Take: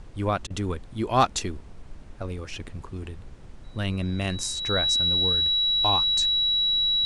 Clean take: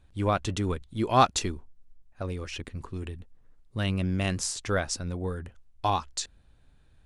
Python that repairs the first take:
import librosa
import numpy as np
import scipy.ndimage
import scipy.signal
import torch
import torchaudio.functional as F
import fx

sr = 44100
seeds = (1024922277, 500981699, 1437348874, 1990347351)

y = fx.fix_declip(x, sr, threshold_db=-8.5)
y = fx.notch(y, sr, hz=3900.0, q=30.0)
y = fx.fix_interpolate(y, sr, at_s=(0.47,), length_ms=31.0)
y = fx.noise_reduce(y, sr, print_start_s=3.26, print_end_s=3.76, reduce_db=15.0)